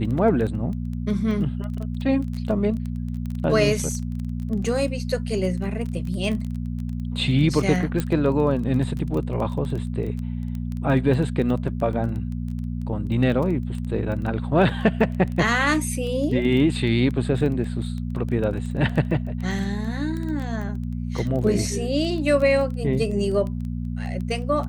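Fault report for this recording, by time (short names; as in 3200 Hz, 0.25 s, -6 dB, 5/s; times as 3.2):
crackle 13/s -28 dBFS
hum 60 Hz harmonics 4 -28 dBFS
8 pop -11 dBFS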